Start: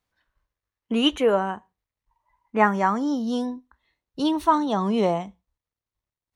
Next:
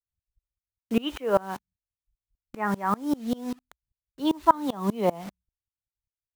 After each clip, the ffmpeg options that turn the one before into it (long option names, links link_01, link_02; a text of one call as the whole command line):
ffmpeg -i in.wav -filter_complex "[0:a]lowpass=3800,acrossover=split=150[link_01][link_02];[link_02]acrusher=bits=6:mix=0:aa=0.000001[link_03];[link_01][link_03]amix=inputs=2:normalize=0,aeval=exprs='val(0)*pow(10,-26*if(lt(mod(-5.1*n/s,1),2*abs(-5.1)/1000),1-mod(-5.1*n/s,1)/(2*abs(-5.1)/1000),(mod(-5.1*n/s,1)-2*abs(-5.1)/1000)/(1-2*abs(-5.1)/1000))/20)':channel_layout=same,volume=3.5dB" out.wav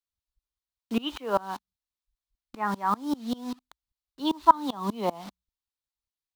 ffmpeg -i in.wav -af "equalizer=frequency=125:width_type=o:width=1:gain=-8,equalizer=frequency=250:width_type=o:width=1:gain=4,equalizer=frequency=500:width_type=o:width=1:gain=-4,equalizer=frequency=1000:width_type=o:width=1:gain=7,equalizer=frequency=2000:width_type=o:width=1:gain=-3,equalizer=frequency=4000:width_type=o:width=1:gain=9,volume=-4dB" out.wav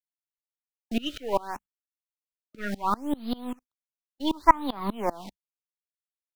ffmpeg -i in.wav -af "aeval=exprs='if(lt(val(0),0),0.447*val(0),val(0))':channel_layout=same,agate=range=-41dB:threshold=-47dB:ratio=16:detection=peak,afftfilt=real='re*(1-between(b*sr/1024,870*pow(7200/870,0.5+0.5*sin(2*PI*0.68*pts/sr))/1.41,870*pow(7200/870,0.5+0.5*sin(2*PI*0.68*pts/sr))*1.41))':imag='im*(1-between(b*sr/1024,870*pow(7200/870,0.5+0.5*sin(2*PI*0.68*pts/sr))/1.41,870*pow(7200/870,0.5+0.5*sin(2*PI*0.68*pts/sr))*1.41))':win_size=1024:overlap=0.75,volume=2.5dB" out.wav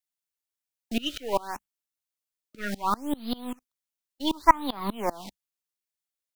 ffmpeg -i in.wav -af "highshelf=frequency=2700:gain=7,volume=-1dB" out.wav